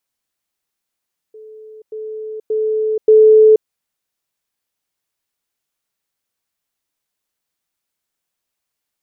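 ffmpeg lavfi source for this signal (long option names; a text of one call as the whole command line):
ffmpeg -f lavfi -i "aevalsrc='pow(10,(-34.5+10*floor(t/0.58))/20)*sin(2*PI*434*t)*clip(min(mod(t,0.58),0.48-mod(t,0.58))/0.005,0,1)':duration=2.32:sample_rate=44100" out.wav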